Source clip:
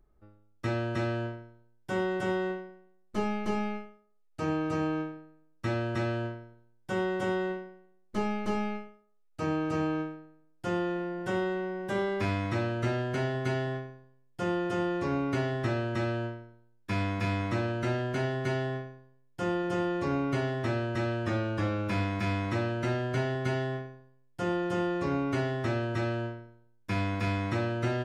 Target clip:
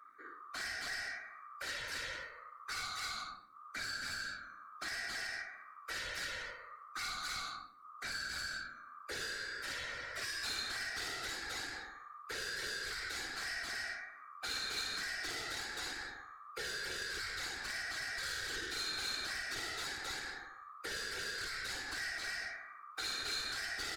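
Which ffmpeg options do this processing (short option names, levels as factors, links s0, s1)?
-filter_complex "[0:a]afftfilt=real='real(if(lt(b,960),b+48*(1-2*mod(floor(b/48),2)),b),0)':imag='imag(if(lt(b,960),b+48*(1-2*mod(floor(b/48),2)),b),0)':win_size=2048:overlap=0.75,acrossover=split=230|1400[s0][s1][s2];[s0]aeval=exprs='max(val(0),0)':c=same[s3];[s3][s1][s2]amix=inputs=3:normalize=0,lowshelf=f=230:t=q:w=3:g=-10.5,aecho=1:1:63|126|189|252:0.708|0.212|0.0637|0.0191,asoftclip=type=tanh:threshold=0.0282,aecho=1:1:3.1:0.51,asetrate=51597,aresample=44100,afftfilt=real='hypot(re,im)*cos(2*PI*random(0))':imag='hypot(re,im)*sin(2*PI*random(1))':win_size=512:overlap=0.75,acrossover=split=140|3000[s4][s5][s6];[s5]acompressor=threshold=0.00224:ratio=5[s7];[s4][s7][s6]amix=inputs=3:normalize=0,volume=2.37"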